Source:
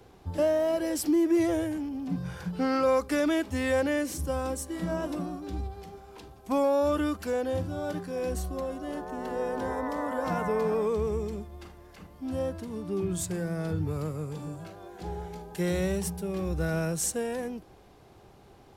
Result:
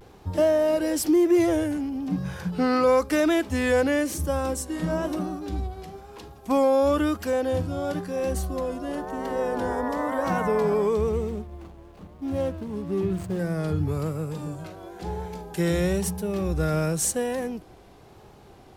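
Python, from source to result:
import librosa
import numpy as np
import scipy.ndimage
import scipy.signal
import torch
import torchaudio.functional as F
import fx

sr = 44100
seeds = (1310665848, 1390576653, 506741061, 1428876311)

y = fx.median_filter(x, sr, points=25, at=(11.09, 13.4))
y = fx.vibrato(y, sr, rate_hz=1.0, depth_cents=75.0)
y = F.gain(torch.from_numpy(y), 4.5).numpy()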